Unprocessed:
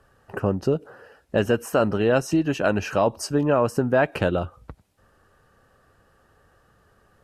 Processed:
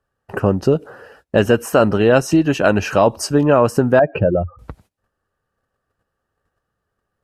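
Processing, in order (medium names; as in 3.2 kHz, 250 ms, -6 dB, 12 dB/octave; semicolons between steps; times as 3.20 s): 3.99–4.59 s: spectral contrast enhancement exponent 2.2; gate -55 dBFS, range -23 dB; trim +7 dB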